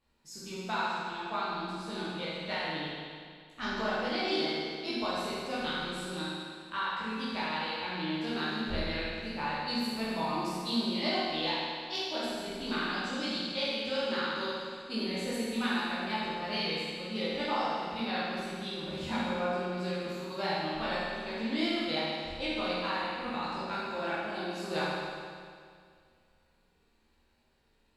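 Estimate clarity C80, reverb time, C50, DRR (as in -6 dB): -1.0 dB, 2.1 s, -3.5 dB, -9.5 dB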